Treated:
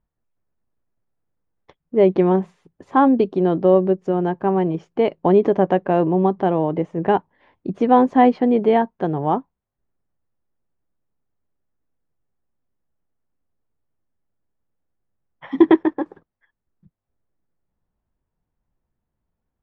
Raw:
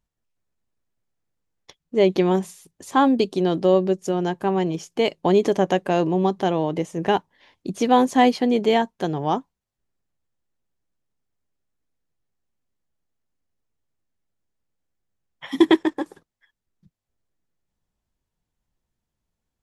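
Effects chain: LPF 1500 Hz 12 dB/oct; gain +3 dB

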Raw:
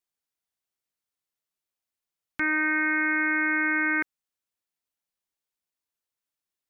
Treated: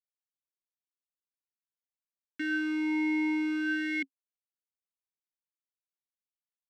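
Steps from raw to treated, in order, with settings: high shelf 2100 Hz +7 dB; sample leveller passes 5; vowel sweep i-u 0.48 Hz; gain -5.5 dB

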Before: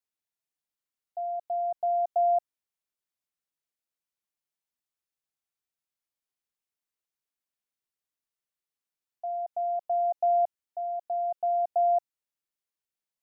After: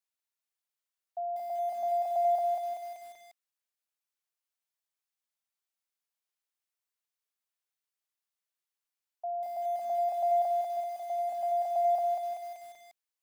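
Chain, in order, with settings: Bessel high-pass 610 Hz, order 8; lo-fi delay 0.192 s, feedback 55%, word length 9-bit, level -3 dB

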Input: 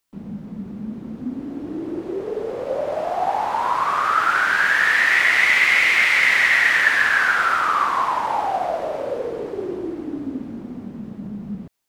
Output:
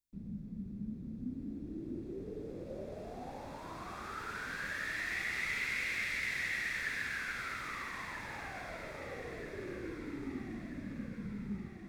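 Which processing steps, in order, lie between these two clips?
passive tone stack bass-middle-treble 10-0-1; notch 3000 Hz, Q 7.6; echo with dull and thin repeats by turns 0.642 s, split 1100 Hz, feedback 71%, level -6 dB; gain +5 dB

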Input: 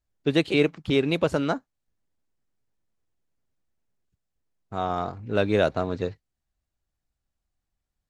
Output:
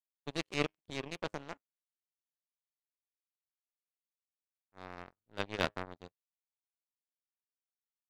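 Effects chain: de-hum 104.2 Hz, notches 31; power-law curve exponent 3; transient shaper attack -7 dB, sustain +1 dB; gain +3 dB

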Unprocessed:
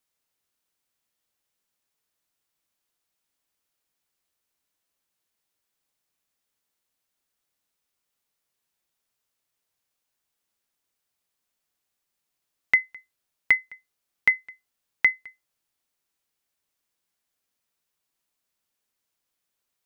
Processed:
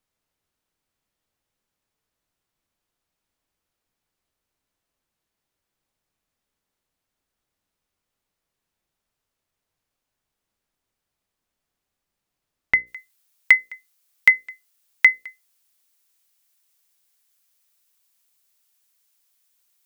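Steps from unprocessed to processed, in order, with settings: tilt -2 dB/oct, from 12.86 s +3 dB/oct; notches 60/120/180/240/300/360/420/480/540 Hz; gain +3 dB

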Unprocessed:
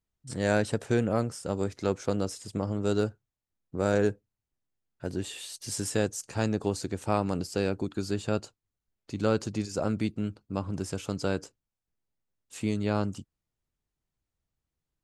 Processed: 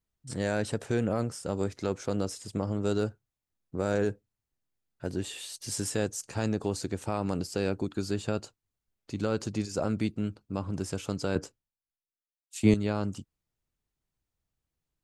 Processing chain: limiter -17 dBFS, peak gain reduction 6 dB; 11.35–12.74 three-band expander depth 100%

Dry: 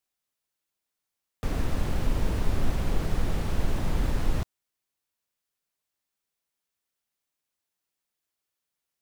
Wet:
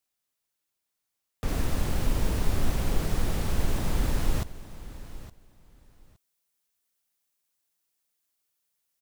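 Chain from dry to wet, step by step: high shelf 5300 Hz +3 dB, from 1.48 s +8.5 dB; feedback echo 0.866 s, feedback 18%, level -16 dB

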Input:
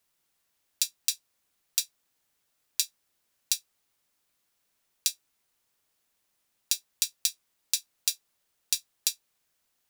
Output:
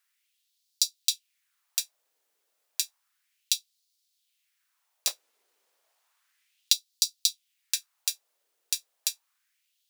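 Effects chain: 5.07–6.73 half-waves squared off; LFO high-pass sine 0.32 Hz 420–4400 Hz; gain -1.5 dB

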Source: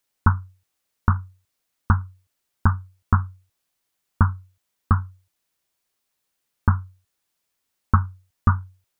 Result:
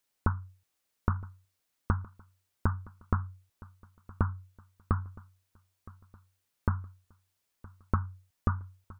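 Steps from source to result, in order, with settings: compressor 5:1, threshold -21 dBFS, peak gain reduction 9.5 dB; on a send: feedback echo 0.966 s, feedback 45%, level -21.5 dB; on the sum: gain -3 dB

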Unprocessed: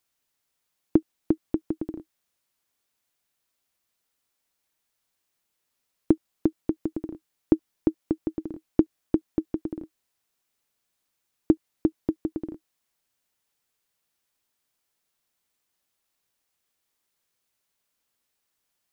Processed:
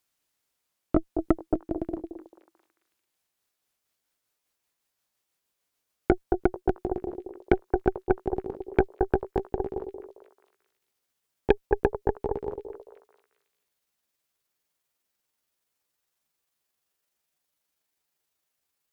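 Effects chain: gliding pitch shift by +7.5 st starting unshifted; delay with a stepping band-pass 0.221 s, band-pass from 430 Hz, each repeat 0.7 oct, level -4 dB; added harmonics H 8 -16 dB, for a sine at -5 dBFS

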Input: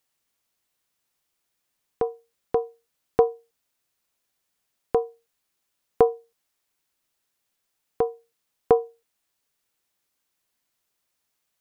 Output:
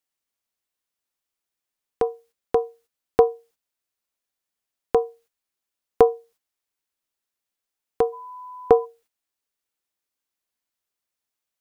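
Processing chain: 8.12–8.84 whine 1000 Hz -39 dBFS; bell 140 Hz -9 dB 0.34 oct; gate -55 dBFS, range -11 dB; gain +3 dB

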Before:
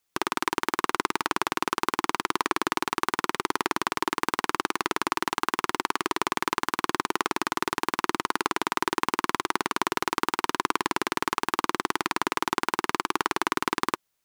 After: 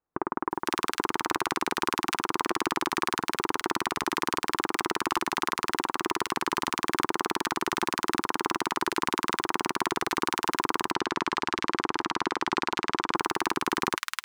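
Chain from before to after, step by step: 10.42–12.61 LPF 5600 Hz 12 dB/oct; bands offset in time lows, highs 0.51 s, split 1400 Hz; crackling interface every 0.38 s, samples 2048, repeat, from 0.52

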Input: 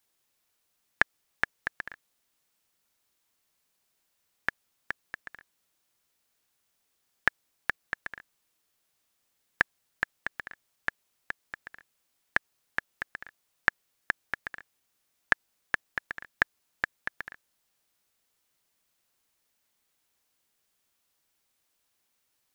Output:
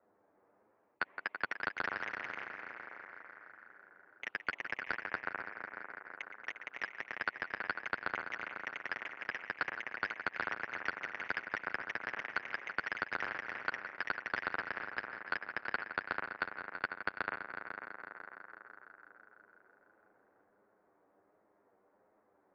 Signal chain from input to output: low-pass opened by the level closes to 630 Hz, open at -37.5 dBFS; in parallel at +0.5 dB: limiter -11.5 dBFS, peak gain reduction 8.5 dB; on the sum: mistuned SSB -230 Hz 580–2200 Hz; reverse; compressor, threshold -30 dBFS, peak gain reduction 12 dB; reverse; multi-head echo 0.166 s, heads all three, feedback 50%, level -17 dB; flange 1.4 Hz, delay 9.3 ms, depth 1.3 ms, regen -5%; echoes that change speed 0.354 s, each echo +2 st, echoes 3, each echo -6 dB; spectral compressor 2:1; gain +3 dB

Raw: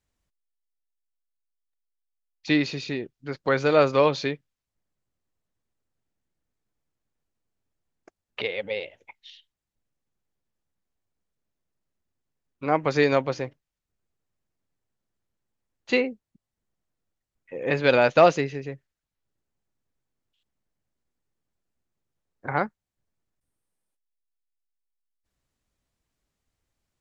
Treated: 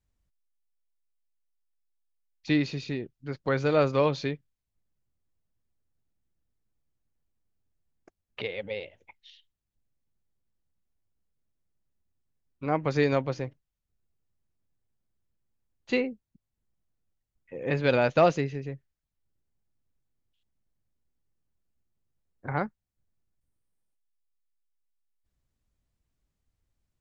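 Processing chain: low shelf 200 Hz +11 dB; gain -6 dB

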